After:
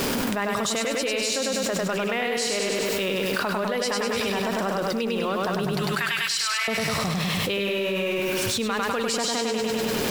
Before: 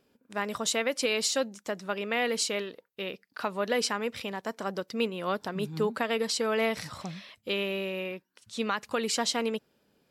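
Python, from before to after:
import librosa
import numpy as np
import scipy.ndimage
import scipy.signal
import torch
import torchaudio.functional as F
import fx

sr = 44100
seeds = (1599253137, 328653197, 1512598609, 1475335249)

y = x + 0.5 * 10.0 ** (-43.0 / 20.0) * np.sign(x)
y = fx.highpass(y, sr, hz=1300.0, slope=24, at=(5.72, 6.68))
y = fx.echo_feedback(y, sr, ms=100, feedback_pct=58, wet_db=-3.0)
y = fx.env_flatten(y, sr, amount_pct=100)
y = y * 10.0 ** (-3.0 / 20.0)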